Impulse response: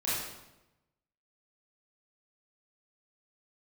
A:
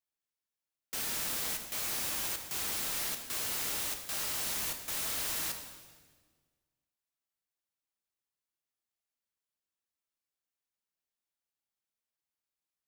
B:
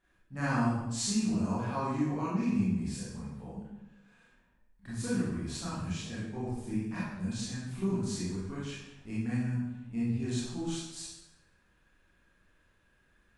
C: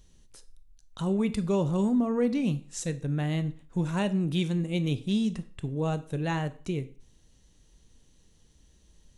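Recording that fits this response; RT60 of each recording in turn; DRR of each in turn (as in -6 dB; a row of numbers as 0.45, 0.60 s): B; 1.5, 0.95, 0.45 s; 4.5, -10.0, 12.5 dB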